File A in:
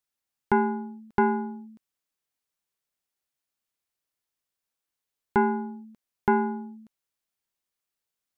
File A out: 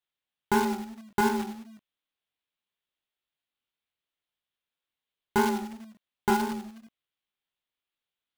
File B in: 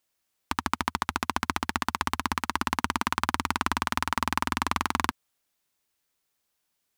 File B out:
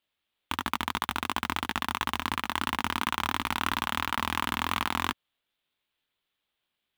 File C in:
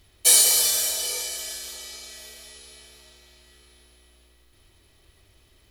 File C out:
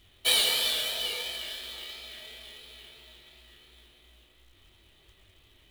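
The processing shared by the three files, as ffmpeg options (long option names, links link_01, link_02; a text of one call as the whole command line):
ffmpeg -i in.wav -af "flanger=delay=17.5:depth=6.8:speed=2.9,highshelf=frequency=4600:width_type=q:width=3:gain=-10.5,acrusher=bits=2:mode=log:mix=0:aa=0.000001" out.wav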